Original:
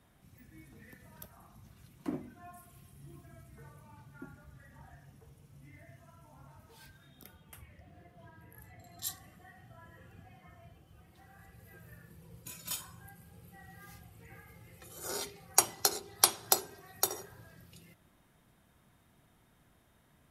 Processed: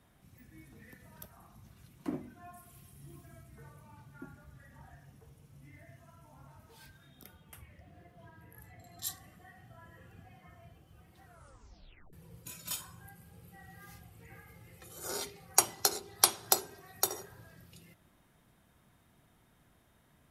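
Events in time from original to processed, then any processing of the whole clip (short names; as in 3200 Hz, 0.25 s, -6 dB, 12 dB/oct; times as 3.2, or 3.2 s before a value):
2.66–3.39 high shelf 4400 Hz +4.5 dB
11.23 tape stop 0.90 s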